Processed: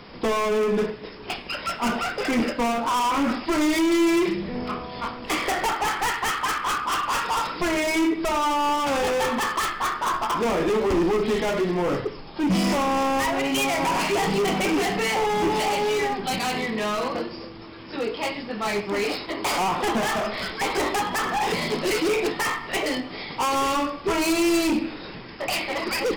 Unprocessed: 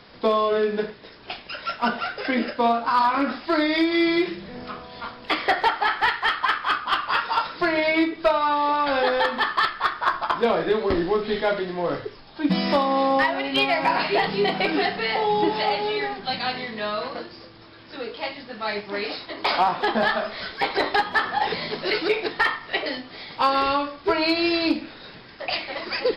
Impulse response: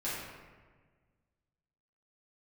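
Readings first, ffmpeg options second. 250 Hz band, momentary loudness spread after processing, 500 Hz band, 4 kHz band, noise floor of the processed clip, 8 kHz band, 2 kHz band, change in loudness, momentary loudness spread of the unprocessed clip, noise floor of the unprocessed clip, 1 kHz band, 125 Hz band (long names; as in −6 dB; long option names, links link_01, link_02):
+2.0 dB, 8 LU, −0.5 dB, −1.5 dB, −39 dBFS, can't be measured, −2.5 dB, −1.0 dB, 12 LU, −45 dBFS, −1.5 dB, +3.5 dB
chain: -filter_complex "[0:a]asoftclip=type=hard:threshold=-26.5dB,equalizer=frequency=100:width_type=o:width=0.67:gain=-4,equalizer=frequency=630:width_type=o:width=0.67:gain=-5,equalizer=frequency=1600:width_type=o:width=0.67:gain=-7,equalizer=frequency=4000:width_type=o:width=0.67:gain=-9,asplit=2[link_01][link_02];[1:a]atrim=start_sample=2205[link_03];[link_02][link_03]afir=irnorm=-1:irlink=0,volume=-20.5dB[link_04];[link_01][link_04]amix=inputs=2:normalize=0,volume=8dB"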